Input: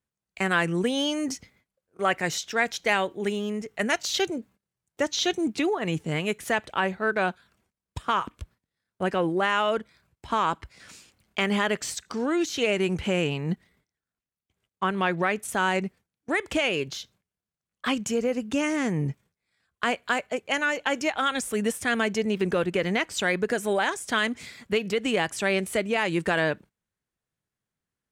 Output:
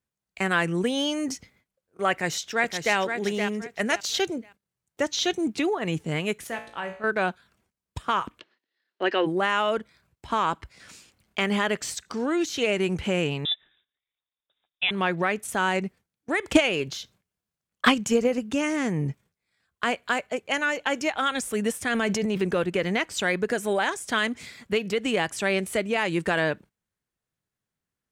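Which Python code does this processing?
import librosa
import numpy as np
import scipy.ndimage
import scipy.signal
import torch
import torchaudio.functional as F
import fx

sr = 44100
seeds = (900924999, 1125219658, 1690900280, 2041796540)

y = fx.echo_throw(x, sr, start_s=2.11, length_s=0.85, ms=520, feedback_pct=25, wet_db=-6.5)
y = fx.comb_fb(y, sr, f0_hz=57.0, decay_s=0.5, harmonics='all', damping=0.0, mix_pct=80, at=(6.47, 7.04))
y = fx.cabinet(y, sr, low_hz=280.0, low_slope=24, high_hz=5500.0, hz=(350.0, 1800.0, 2900.0, 4200.0), db=(5, 8, 9, 7), at=(8.38, 9.25), fade=0.02)
y = fx.freq_invert(y, sr, carrier_hz=3700, at=(13.45, 14.91))
y = fx.transient(y, sr, attack_db=11, sustain_db=3, at=(16.42, 18.38), fade=0.02)
y = fx.transient(y, sr, attack_db=-5, sustain_db=8, at=(21.87, 22.39), fade=0.02)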